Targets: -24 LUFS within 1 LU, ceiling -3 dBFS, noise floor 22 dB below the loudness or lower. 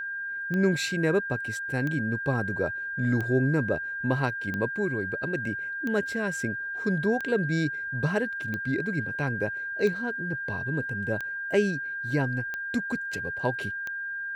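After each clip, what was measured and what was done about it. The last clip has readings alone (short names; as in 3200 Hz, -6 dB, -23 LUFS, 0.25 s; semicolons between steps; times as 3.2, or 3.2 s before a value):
clicks 11; steady tone 1600 Hz; tone level -31 dBFS; loudness -28.5 LUFS; peak -12.0 dBFS; loudness target -24.0 LUFS
-> de-click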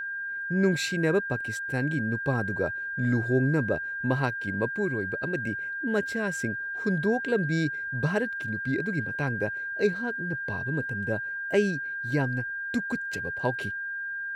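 clicks 0; steady tone 1600 Hz; tone level -31 dBFS
-> notch 1600 Hz, Q 30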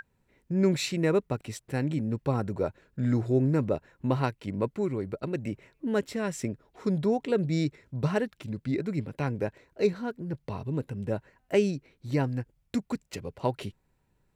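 steady tone none; loudness -30.5 LUFS; peak -12.0 dBFS; loudness target -24.0 LUFS
-> gain +6.5 dB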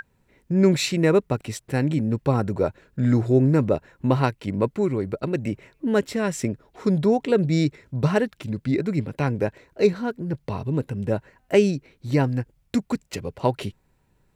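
loudness -24.0 LUFS; peak -5.5 dBFS; noise floor -66 dBFS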